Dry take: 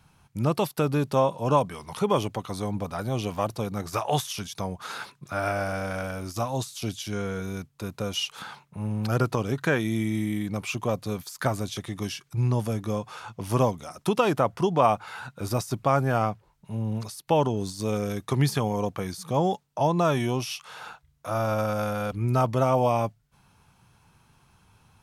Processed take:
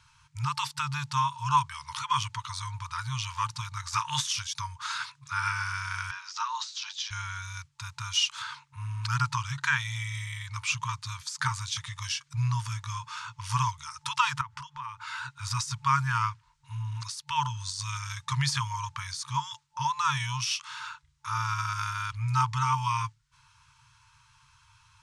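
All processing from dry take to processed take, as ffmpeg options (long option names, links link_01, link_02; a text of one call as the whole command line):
ffmpeg -i in.wav -filter_complex "[0:a]asettb=1/sr,asplit=3[link_01][link_02][link_03];[link_01]atrim=end=6.114[link_04];[link_02]atrim=start=6.11:end=7.11,asetpts=PTS-STARTPTS,afade=type=in:duration=0.004:curve=qsin,afade=type=out:start_time=0.996:duration=0.004:curve=qsin,lowpass=frequency=5500:width=0.5412,lowpass=frequency=5500:width=1.3066,afreqshift=110[link_05];[link_03]atrim=start=7.106[link_06];[link_04][link_05]acrossfade=duration=0.004:curve1=hsin:curve2=qsin[link_07];[link_07][link_06]acrossfade=duration=0.004:curve1=qsin:curve2=hsin,asettb=1/sr,asplit=3[link_08][link_09][link_10];[link_08]atrim=end=14.414[link_11];[link_09]atrim=start=14.41:end=15.01,asetpts=PTS-STARTPTS,afade=type=in:duration=0.004:curve=qsin,afade=type=out:start_time=0.596:duration=0.004:curve=qsin,highshelf=frequency=4600:gain=-5.5,acompressor=threshold=-31dB:ratio=8:attack=3.2:release=140:knee=1:detection=peak[link_12];[link_10]atrim=start=15.006[link_13];[link_11][link_12]acrossfade=duration=0.004:curve1=hsin:curve2=qsin[link_14];[link_14][link_13]acrossfade=duration=0.004:curve1=qsin:curve2=hsin,lowpass=frequency=7800:width=0.5412,lowpass=frequency=7800:width=1.3066,afftfilt=real='re*(1-between(b*sr/4096,150,880))':imag='im*(1-between(b*sr/4096,150,880))':win_size=4096:overlap=0.75,bass=frequency=250:gain=-6,treble=frequency=4000:gain=4,volume=2.5dB" out.wav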